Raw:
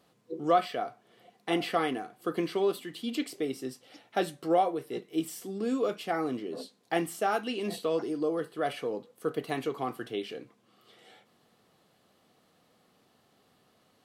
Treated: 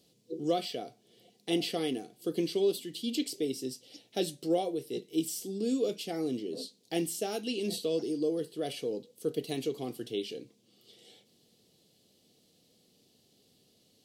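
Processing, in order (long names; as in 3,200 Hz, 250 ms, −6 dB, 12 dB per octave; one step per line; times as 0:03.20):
drawn EQ curve 450 Hz 0 dB, 1,200 Hz −20 dB, 1,700 Hz −14 dB, 3,000 Hz +1 dB, 4,900 Hz +7 dB, 11,000 Hz +4 dB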